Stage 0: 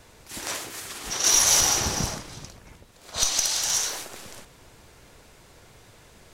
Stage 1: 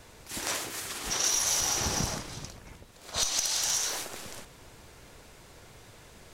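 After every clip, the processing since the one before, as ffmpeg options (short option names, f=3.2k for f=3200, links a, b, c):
-af "acompressor=threshold=-25dB:ratio=5"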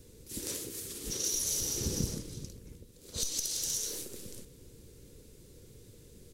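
-af "firequalizer=gain_entry='entry(480,0);entry(680,-22);entry(3800,-8);entry(11000,0)':delay=0.05:min_phase=1"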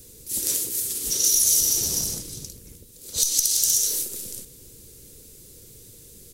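-filter_complex "[0:a]acrossover=split=1800[a][b];[a]asoftclip=type=hard:threshold=-36.5dB[c];[c][b]amix=inputs=2:normalize=0,crystalizer=i=3:c=0,volume=2.5dB"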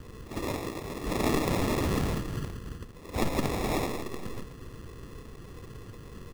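-af "tiltshelf=f=1.4k:g=7,aresample=16000,aresample=44100,acrusher=samples=29:mix=1:aa=0.000001,volume=1dB"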